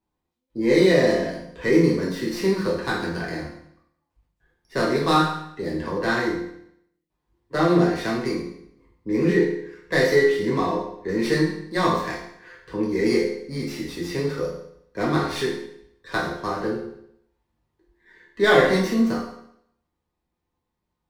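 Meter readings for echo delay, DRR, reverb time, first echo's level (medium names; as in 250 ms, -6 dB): no echo, -6.0 dB, 0.70 s, no echo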